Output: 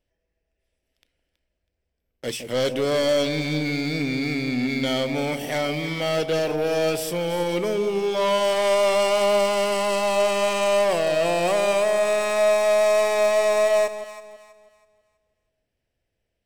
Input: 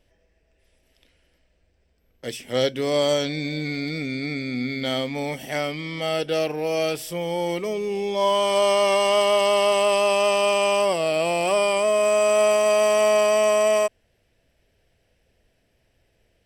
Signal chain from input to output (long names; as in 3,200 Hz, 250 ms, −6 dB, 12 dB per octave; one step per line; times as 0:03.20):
leveller curve on the samples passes 3
delay that swaps between a low-pass and a high-pass 162 ms, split 830 Hz, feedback 55%, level −8 dB
level −7.5 dB